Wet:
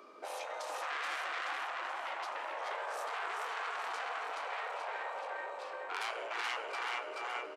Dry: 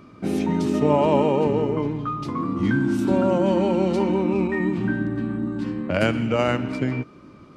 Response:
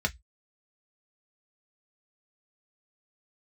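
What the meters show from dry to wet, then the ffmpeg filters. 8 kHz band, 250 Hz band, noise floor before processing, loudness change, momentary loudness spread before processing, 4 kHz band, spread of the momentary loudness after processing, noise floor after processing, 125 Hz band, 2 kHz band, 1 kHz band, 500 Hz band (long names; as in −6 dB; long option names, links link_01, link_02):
can't be measured, below −40 dB, −47 dBFS, −16.5 dB, 8 LU, −5.5 dB, 4 LU, −45 dBFS, below −40 dB, −6.0 dB, −8.5 dB, −21.5 dB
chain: -filter_complex "[0:a]aecho=1:1:428|856|1284|1712|2140|2568|2996:0.708|0.375|0.199|0.105|0.0559|0.0296|0.0157,asplit=2[link_01][link_02];[1:a]atrim=start_sample=2205,asetrate=28665,aresample=44100[link_03];[link_02][link_03]afir=irnorm=-1:irlink=0,volume=-20.5dB[link_04];[link_01][link_04]amix=inputs=2:normalize=0,asoftclip=type=tanh:threshold=-20.5dB,afftfilt=real='re*lt(hypot(re,im),0.112)':imag='im*lt(hypot(re,im),0.112)':win_size=1024:overlap=0.75,highpass=frequency=430:width=0.5412,highpass=frequency=430:width=1.3066,volume=-3dB"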